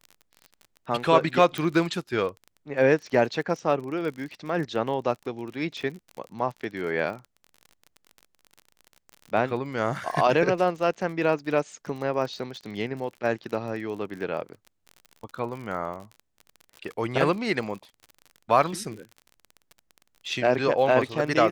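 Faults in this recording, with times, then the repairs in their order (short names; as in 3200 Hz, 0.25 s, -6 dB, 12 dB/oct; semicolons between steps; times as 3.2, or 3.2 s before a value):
crackle 38/s -34 dBFS
1.58 pop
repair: de-click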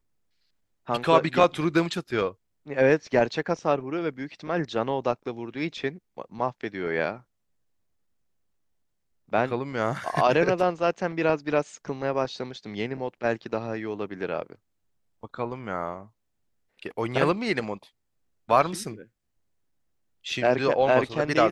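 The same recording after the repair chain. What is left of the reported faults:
none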